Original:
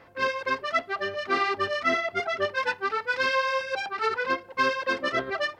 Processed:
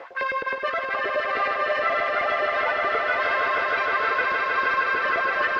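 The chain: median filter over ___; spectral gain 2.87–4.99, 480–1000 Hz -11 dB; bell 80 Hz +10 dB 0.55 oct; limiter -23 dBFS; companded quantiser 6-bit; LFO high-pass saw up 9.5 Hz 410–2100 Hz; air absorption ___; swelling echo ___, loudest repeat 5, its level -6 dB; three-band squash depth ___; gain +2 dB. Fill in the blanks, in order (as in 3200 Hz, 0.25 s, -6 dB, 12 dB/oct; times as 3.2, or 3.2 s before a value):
5 samples, 210 m, 0.155 s, 40%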